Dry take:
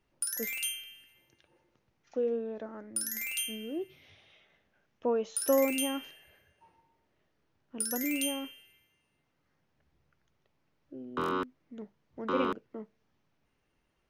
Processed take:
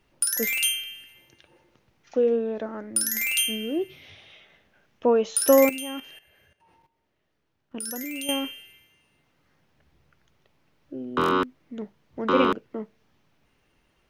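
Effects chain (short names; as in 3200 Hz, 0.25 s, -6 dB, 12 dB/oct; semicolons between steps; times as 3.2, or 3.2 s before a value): bell 3100 Hz +2.5 dB 1.2 oct; 5.69–8.29 level quantiser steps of 14 dB; gain +9 dB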